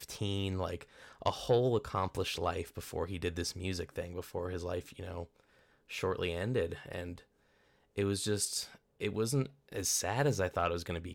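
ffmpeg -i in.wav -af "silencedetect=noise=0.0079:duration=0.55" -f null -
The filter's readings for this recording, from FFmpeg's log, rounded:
silence_start: 5.24
silence_end: 5.91 | silence_duration: 0.67
silence_start: 7.18
silence_end: 7.98 | silence_duration: 0.80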